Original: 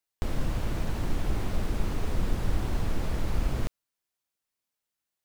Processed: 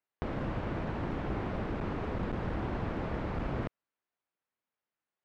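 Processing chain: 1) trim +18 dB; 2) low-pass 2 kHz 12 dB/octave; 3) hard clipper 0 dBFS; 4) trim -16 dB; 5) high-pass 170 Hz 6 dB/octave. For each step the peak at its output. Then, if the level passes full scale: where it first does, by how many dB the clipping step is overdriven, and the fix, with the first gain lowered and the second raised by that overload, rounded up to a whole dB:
+4.5 dBFS, +4.5 dBFS, 0.0 dBFS, -16.0 dBFS, -19.0 dBFS; step 1, 4.5 dB; step 1 +13 dB, step 4 -11 dB

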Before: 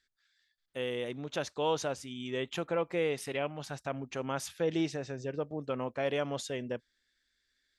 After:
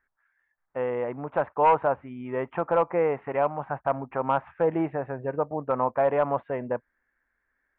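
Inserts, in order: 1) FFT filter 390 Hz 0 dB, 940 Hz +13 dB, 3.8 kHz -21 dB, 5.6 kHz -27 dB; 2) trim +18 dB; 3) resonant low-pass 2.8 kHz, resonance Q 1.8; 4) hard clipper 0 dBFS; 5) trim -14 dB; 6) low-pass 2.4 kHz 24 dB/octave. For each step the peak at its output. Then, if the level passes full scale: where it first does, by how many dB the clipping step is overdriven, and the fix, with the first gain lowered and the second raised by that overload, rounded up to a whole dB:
-12.5 dBFS, +5.5 dBFS, +6.5 dBFS, 0.0 dBFS, -14.0 dBFS, -12.5 dBFS; step 2, 6.5 dB; step 2 +11 dB, step 5 -7 dB

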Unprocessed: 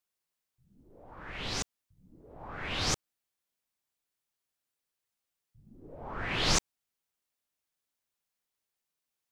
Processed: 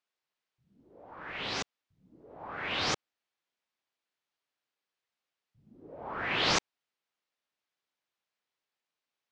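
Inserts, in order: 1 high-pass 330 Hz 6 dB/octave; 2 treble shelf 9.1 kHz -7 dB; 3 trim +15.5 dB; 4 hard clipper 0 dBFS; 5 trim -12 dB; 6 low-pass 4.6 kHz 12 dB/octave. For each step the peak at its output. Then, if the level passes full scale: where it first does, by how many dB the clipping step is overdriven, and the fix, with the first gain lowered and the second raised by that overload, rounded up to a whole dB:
-15.5 dBFS, -17.0 dBFS, -1.5 dBFS, -1.5 dBFS, -13.5 dBFS, -15.5 dBFS; nothing clips

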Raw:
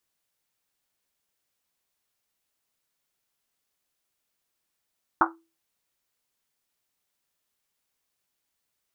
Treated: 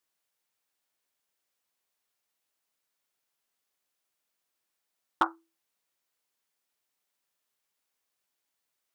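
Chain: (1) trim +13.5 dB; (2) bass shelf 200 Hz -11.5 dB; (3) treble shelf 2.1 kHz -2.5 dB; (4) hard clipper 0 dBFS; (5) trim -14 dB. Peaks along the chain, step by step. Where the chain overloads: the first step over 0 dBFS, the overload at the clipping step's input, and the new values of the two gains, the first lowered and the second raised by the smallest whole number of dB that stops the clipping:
+7.0 dBFS, +6.0 dBFS, +5.5 dBFS, 0.0 dBFS, -14.0 dBFS; step 1, 5.5 dB; step 1 +7.5 dB, step 5 -8 dB

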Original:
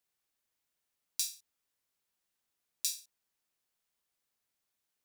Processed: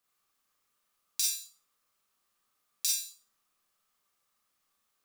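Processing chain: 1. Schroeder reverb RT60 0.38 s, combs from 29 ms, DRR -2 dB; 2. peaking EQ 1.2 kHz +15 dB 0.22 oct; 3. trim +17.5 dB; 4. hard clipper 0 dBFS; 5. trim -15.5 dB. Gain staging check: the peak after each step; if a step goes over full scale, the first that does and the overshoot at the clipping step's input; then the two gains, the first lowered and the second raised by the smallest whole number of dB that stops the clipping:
-11.0 dBFS, -11.0 dBFS, +6.5 dBFS, 0.0 dBFS, -15.5 dBFS; step 3, 6.5 dB; step 3 +10.5 dB, step 5 -8.5 dB

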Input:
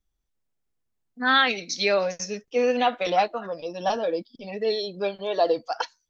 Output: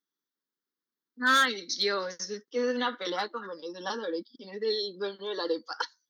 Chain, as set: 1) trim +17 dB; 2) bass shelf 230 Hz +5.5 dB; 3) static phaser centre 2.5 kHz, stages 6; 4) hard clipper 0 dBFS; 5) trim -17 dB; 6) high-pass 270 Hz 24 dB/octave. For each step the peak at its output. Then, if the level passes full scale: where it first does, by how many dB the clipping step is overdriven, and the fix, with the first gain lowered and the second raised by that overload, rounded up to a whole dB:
+9.5 dBFS, +9.5 dBFS, +8.5 dBFS, 0.0 dBFS, -17.0 dBFS, -12.0 dBFS; step 1, 8.5 dB; step 1 +8 dB, step 5 -8 dB

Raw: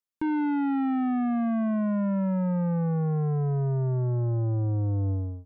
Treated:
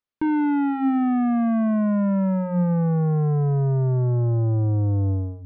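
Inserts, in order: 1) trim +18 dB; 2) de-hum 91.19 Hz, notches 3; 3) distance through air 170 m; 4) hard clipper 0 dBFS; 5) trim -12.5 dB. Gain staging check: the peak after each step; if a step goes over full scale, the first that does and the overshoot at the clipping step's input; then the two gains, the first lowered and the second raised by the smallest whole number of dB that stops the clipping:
-6.5 dBFS, -2.5 dBFS, -2.5 dBFS, -2.5 dBFS, -15.0 dBFS; nothing clips

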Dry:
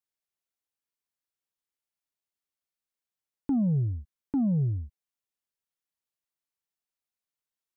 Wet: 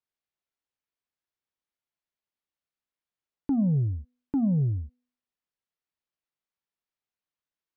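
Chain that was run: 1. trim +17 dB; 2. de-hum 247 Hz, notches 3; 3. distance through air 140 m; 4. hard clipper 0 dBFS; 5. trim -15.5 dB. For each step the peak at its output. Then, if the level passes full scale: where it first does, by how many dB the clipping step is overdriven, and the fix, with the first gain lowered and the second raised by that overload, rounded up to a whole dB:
-5.0 dBFS, -2.5 dBFS, -2.5 dBFS, -2.5 dBFS, -18.0 dBFS; nothing clips

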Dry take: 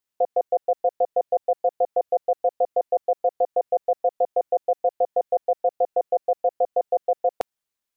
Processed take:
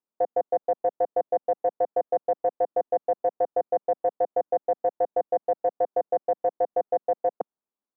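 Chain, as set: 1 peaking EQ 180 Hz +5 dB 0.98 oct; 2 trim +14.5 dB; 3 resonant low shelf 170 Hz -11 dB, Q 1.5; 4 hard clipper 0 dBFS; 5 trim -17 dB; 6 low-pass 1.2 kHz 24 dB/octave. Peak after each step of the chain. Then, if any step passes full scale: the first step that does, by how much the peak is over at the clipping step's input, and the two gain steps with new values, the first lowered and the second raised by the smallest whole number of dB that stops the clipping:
-12.0 dBFS, +2.5 dBFS, +3.5 dBFS, 0.0 dBFS, -17.0 dBFS, -16.0 dBFS; step 2, 3.5 dB; step 2 +10.5 dB, step 5 -13 dB

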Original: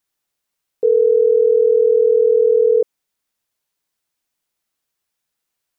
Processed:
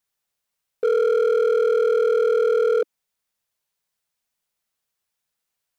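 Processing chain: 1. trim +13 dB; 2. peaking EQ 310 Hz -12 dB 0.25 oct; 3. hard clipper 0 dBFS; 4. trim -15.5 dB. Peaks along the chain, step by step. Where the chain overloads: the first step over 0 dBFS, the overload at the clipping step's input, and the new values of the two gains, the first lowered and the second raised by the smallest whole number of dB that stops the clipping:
+6.0 dBFS, +5.5 dBFS, 0.0 dBFS, -15.5 dBFS; step 1, 5.5 dB; step 1 +7 dB, step 4 -9.5 dB

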